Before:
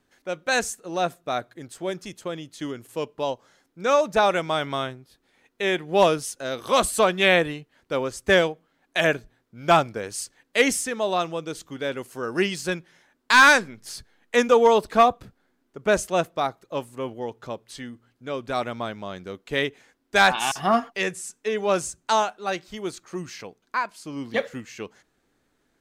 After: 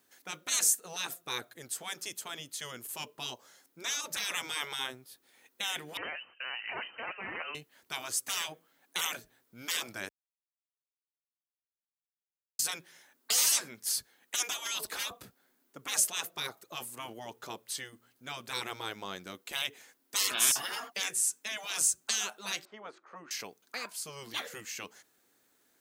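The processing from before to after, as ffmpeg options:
-filter_complex "[0:a]asettb=1/sr,asplit=3[s0][s1][s2];[s0]atrim=end=5.974[s3];[s1]atrim=start=5.97:end=7.55,asetpts=PTS-STARTPTS,afade=t=in:d=0.004:c=qsin,afade=t=out:st=1.576:d=0.004:c=qsin,lowpass=f=2600:t=q:w=0.5098,lowpass=f=2600:t=q:w=0.6013,lowpass=f=2600:t=q:w=0.9,lowpass=f=2600:t=q:w=2.563,afreqshift=-3100[s4];[s2]atrim=start=7.546[s5];[s3][s4]acrossfade=d=0.004:c1=hsin:c2=qsin[s6];[s6][s5]acrossfade=d=0.004:c1=qsin:c2=hsin,asettb=1/sr,asplit=3[s7][s8][s9];[s7]atrim=end=22.654[s10];[s8]atrim=start=22.65:end=23.31,asetpts=PTS-STARTPTS,afade=t=in:d=0.004:c=qsin,afade=t=out:st=0.656:d=0.004:c=qsin,asuperpass=centerf=720:order=4:qfactor=0.6[s11];[s9]atrim=start=23.306[s12];[s10][s11]acrossfade=d=0.004:c1=hsin:c2=qsin[s13];[s13][s12]acrossfade=d=0.004:c1=qsin:c2=hsin,asplit=3[s14][s15][s16];[s14]atrim=end=10.09,asetpts=PTS-STARTPTS,afade=t=out:st=10.086:d=0.004:c=hsin[s17];[s15]atrim=start=10.09:end=12.59,asetpts=PTS-STARTPTS,volume=0[s18];[s16]atrim=start=12.59,asetpts=PTS-STARTPTS,afade=t=in:d=0.004:c=hsin[s19];[s17][s18][s19]concat=n=3:v=0:a=1,afftfilt=real='re*lt(hypot(re,im),0.112)':imag='im*lt(hypot(re,im),0.112)':win_size=1024:overlap=0.75,highpass=44,aemphasis=mode=production:type=bsi,volume=0.75"

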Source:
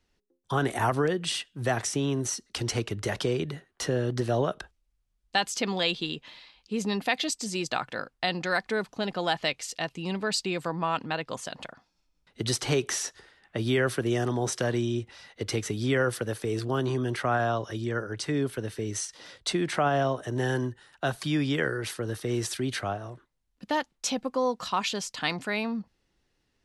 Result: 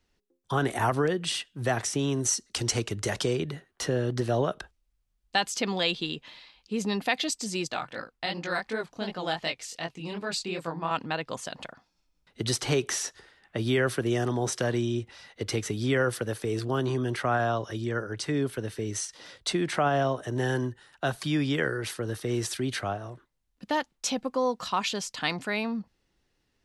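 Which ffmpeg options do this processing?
-filter_complex "[0:a]asettb=1/sr,asplit=3[s0][s1][s2];[s0]atrim=end=1.994[s3];[s1]atrim=start=1.99:end=3.36,asetpts=PTS-STARTPTS,afade=t=in:d=0.004:c=qsin,afade=t=out:st=1.366:d=0.004:c=qsin,equalizer=f=7400:t=o:w=1.1:g=7[s4];[s2]atrim=start=3.356[s5];[s3][s4]acrossfade=d=0.004:c1=hsin:c2=qsin[s6];[s6][s5]acrossfade=d=0.004:c1=qsin:c2=hsin,asettb=1/sr,asplit=3[s7][s8][s9];[s7]atrim=end=7.684[s10];[s8]atrim=start=7.68:end=10.91,asetpts=PTS-STARTPTS,afade=t=in:d=0.004:c=qsin,afade=t=out:st=3.226:d=0.004:c=qsin,flanger=delay=17:depth=8:speed=2.7[s11];[s9]atrim=start=10.906[s12];[s10][s11]acrossfade=d=0.004:c1=hsin:c2=qsin[s13];[s13][s12]acrossfade=d=0.004:c1=qsin:c2=hsin"

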